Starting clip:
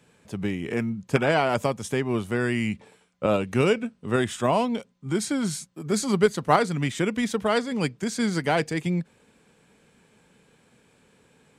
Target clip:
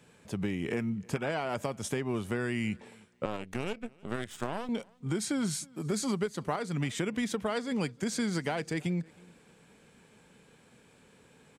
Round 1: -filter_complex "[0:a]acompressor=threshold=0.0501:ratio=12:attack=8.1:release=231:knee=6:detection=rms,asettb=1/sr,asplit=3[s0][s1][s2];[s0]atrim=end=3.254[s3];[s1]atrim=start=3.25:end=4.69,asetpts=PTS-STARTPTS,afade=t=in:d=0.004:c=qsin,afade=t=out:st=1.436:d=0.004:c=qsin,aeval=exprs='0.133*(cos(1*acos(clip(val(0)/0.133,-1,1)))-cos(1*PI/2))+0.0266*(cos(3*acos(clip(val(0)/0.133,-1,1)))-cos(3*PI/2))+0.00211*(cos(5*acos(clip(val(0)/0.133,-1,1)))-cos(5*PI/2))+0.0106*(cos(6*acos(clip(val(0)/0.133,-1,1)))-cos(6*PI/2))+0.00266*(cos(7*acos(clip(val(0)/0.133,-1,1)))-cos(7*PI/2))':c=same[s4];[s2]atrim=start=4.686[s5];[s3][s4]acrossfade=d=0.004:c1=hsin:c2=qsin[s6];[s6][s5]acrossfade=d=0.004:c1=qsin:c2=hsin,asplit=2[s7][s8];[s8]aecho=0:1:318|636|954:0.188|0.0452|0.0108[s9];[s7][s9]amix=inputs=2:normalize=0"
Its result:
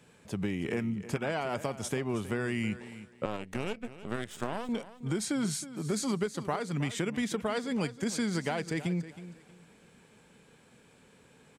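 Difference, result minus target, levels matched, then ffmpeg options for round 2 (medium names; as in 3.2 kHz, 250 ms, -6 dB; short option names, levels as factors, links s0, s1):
echo-to-direct +11.5 dB
-filter_complex "[0:a]acompressor=threshold=0.0501:ratio=12:attack=8.1:release=231:knee=6:detection=rms,asettb=1/sr,asplit=3[s0][s1][s2];[s0]atrim=end=3.254[s3];[s1]atrim=start=3.25:end=4.69,asetpts=PTS-STARTPTS,afade=t=in:d=0.004:c=qsin,afade=t=out:st=1.436:d=0.004:c=qsin,aeval=exprs='0.133*(cos(1*acos(clip(val(0)/0.133,-1,1)))-cos(1*PI/2))+0.0266*(cos(3*acos(clip(val(0)/0.133,-1,1)))-cos(3*PI/2))+0.00211*(cos(5*acos(clip(val(0)/0.133,-1,1)))-cos(5*PI/2))+0.0106*(cos(6*acos(clip(val(0)/0.133,-1,1)))-cos(6*PI/2))+0.00266*(cos(7*acos(clip(val(0)/0.133,-1,1)))-cos(7*PI/2))':c=same[s4];[s2]atrim=start=4.686[s5];[s3][s4]acrossfade=d=0.004:c1=hsin:c2=qsin[s6];[s6][s5]acrossfade=d=0.004:c1=qsin:c2=hsin,asplit=2[s7][s8];[s8]aecho=0:1:318|636:0.0501|0.012[s9];[s7][s9]amix=inputs=2:normalize=0"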